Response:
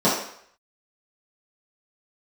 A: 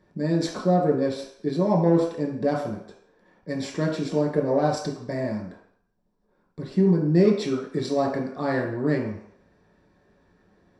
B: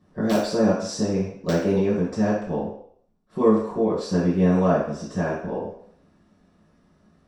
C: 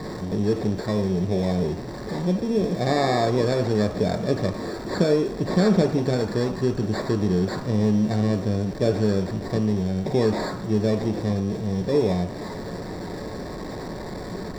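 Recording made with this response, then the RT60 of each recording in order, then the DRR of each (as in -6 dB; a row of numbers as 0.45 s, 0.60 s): B; 0.65 s, 0.65 s, 0.65 s; -2.5 dB, -11.0 dB, 5.0 dB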